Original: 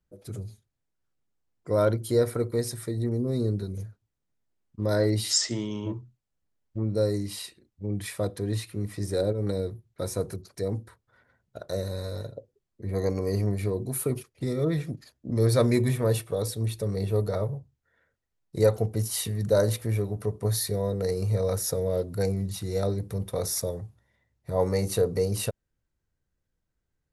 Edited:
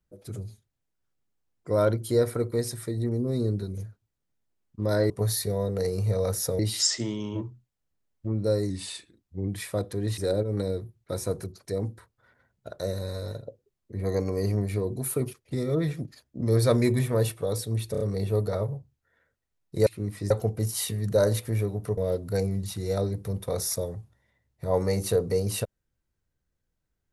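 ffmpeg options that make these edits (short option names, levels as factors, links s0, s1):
-filter_complex "[0:a]asplit=12[s0][s1][s2][s3][s4][s5][s6][s7][s8][s9][s10][s11];[s0]atrim=end=5.102[s12];[s1]atrim=start=20.338:end=21.832[s13];[s2]atrim=start=5.098:end=7.214[s14];[s3]atrim=start=7.21:end=7.93,asetpts=PTS-STARTPTS,asetrate=41013,aresample=44100[s15];[s4]atrim=start=7.926:end=8.632[s16];[s5]atrim=start=9.068:end=16.842[s17];[s6]atrim=start=16.808:end=16.842[s18];[s7]atrim=start=16.808:end=16.842[s19];[s8]atrim=start=16.808:end=18.672[s20];[s9]atrim=start=8.628:end=9.072[s21];[s10]atrim=start=18.668:end=20.342[s22];[s11]atrim=start=21.828[s23];[s12][s13]acrossfade=d=0.004:c1=hsin:c2=hsin[s24];[s24][s14]acrossfade=d=0.004:c1=hsin:c2=hsin[s25];[s25][s15]acrossfade=d=0.004:c1=hsin:c2=hsin[s26];[s26][s16]acrossfade=d=0.004:c1=hsin:c2=hsin[s27];[s27][s17]acrossfade=d=0.004:c1=hsin:c2=hsin[s28];[s28][s18]acrossfade=d=0.004:c1=hsin:c2=hsin[s29];[s29][s19]acrossfade=d=0.004:c1=hsin:c2=hsin[s30];[s30][s20]acrossfade=d=0.004:c1=hsin:c2=hsin[s31];[s31][s21]acrossfade=d=0.004:c1=hsin:c2=hsin[s32];[s32][s22]acrossfade=d=0.004:c1=hsin:c2=hsin[s33];[s33][s23]acrossfade=d=0.004:c1=hsin:c2=hsin"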